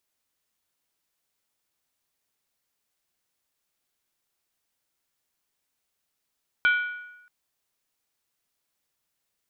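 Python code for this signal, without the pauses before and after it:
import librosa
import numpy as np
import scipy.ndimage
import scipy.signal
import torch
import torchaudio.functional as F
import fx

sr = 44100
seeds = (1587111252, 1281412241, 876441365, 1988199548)

y = fx.strike_skin(sr, length_s=0.63, level_db=-16.0, hz=1460.0, decay_s=0.96, tilt_db=7.5, modes=5)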